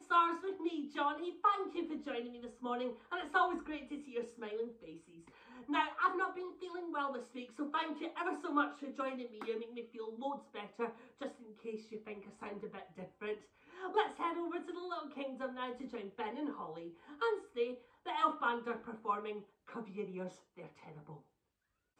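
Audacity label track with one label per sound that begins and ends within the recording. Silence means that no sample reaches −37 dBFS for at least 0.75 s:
5.700000	20.280000	sound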